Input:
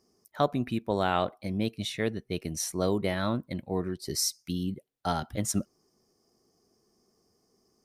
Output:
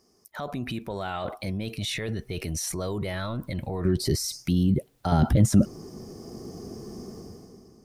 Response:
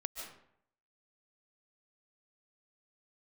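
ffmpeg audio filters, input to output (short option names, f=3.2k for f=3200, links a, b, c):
-af "asubboost=boost=3:cutoff=120,dynaudnorm=f=100:g=13:m=15dB,alimiter=level_in=4dB:limit=-24dB:level=0:latency=1:release=37,volume=-4dB,asetnsamples=n=441:p=0,asendcmd='3.85 equalizer g 8;5.12 equalizer g 14',equalizer=f=220:t=o:w=3:g=-2.5,volume=6dB"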